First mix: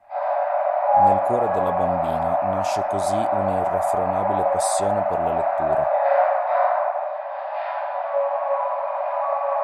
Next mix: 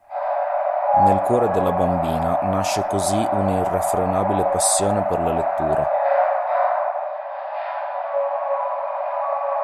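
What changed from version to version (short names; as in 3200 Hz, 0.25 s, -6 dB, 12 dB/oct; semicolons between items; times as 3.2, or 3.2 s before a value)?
speech +6.5 dB; master: add high shelf 9700 Hz +6 dB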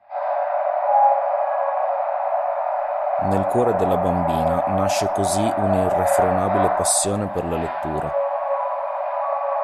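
speech: entry +2.25 s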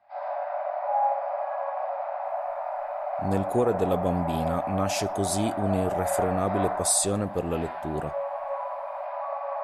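speech -3.5 dB; background: send -9.0 dB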